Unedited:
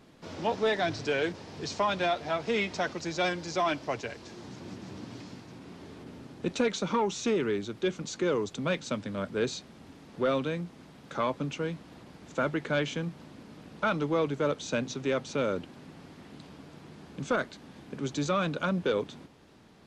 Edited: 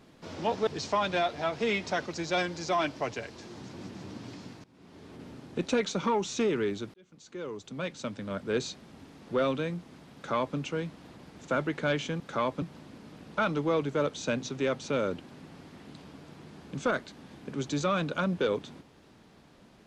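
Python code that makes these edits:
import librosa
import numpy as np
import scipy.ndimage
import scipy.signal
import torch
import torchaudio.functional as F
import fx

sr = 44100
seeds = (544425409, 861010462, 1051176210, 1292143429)

y = fx.edit(x, sr, fx.cut(start_s=0.67, length_s=0.87),
    fx.fade_in_from(start_s=5.51, length_s=0.59, floor_db=-20.5),
    fx.fade_in_span(start_s=7.81, length_s=1.66),
    fx.duplicate(start_s=11.02, length_s=0.42, to_s=13.07), tone=tone)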